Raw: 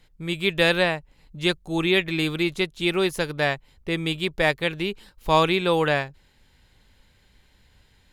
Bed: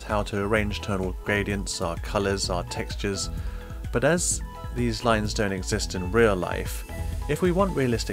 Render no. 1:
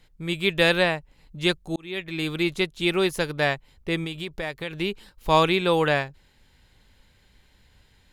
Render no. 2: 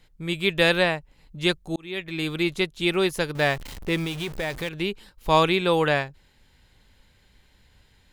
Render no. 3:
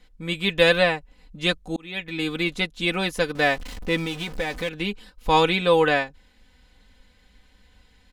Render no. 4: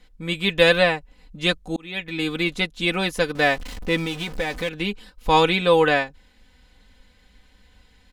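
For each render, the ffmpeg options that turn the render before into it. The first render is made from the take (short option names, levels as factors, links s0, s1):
-filter_complex "[0:a]asettb=1/sr,asplit=3[s0][s1][s2];[s0]atrim=end=4.044[s3];[s1]atrim=start=4.04:end=4.78,asetpts=PTS-STARTPTS,afade=t=in:d=0.004:c=qsin,afade=t=out:st=0.736:d=0.004:c=qsin,acompressor=threshold=0.0355:ratio=3:attack=3.2:release=140:knee=1:detection=peak[s4];[s2]atrim=start=4.776[s5];[s3][s4]acrossfade=d=0.004:c1=hsin:c2=qsin[s6];[s6][s5]acrossfade=d=0.004:c1=qsin:c2=hsin,asplit=2[s7][s8];[s7]atrim=end=1.76,asetpts=PTS-STARTPTS,afade=t=out:st=1.756:d=0.004:c=hsin[s9];[s8]atrim=start=1.76,asetpts=PTS-STARTPTS,afade=t=in:d=0.71[s10];[s9][s10]concat=n=2:v=0:a=1"
-filter_complex "[0:a]asettb=1/sr,asplit=3[s0][s1][s2];[s0]atrim=end=3.354[s3];[s1]atrim=start=3.35:end=4.69,asetpts=PTS-STARTPTS,afade=t=in:d=0.004:c=qsin,afade=t=out:st=1.336:d=0.004:c=qsin,aeval=exprs='val(0)+0.5*0.0224*sgn(val(0))':c=same[s4];[s2]atrim=start=4.686[s5];[s3][s4]acrossfade=d=0.004:c1=hsin:c2=qsin[s6];[s6][s5]acrossfade=d=0.004:c1=qsin:c2=hsin"
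-af "highshelf=f=12000:g=-11,aecho=1:1:4:0.77"
-af "volume=1.19"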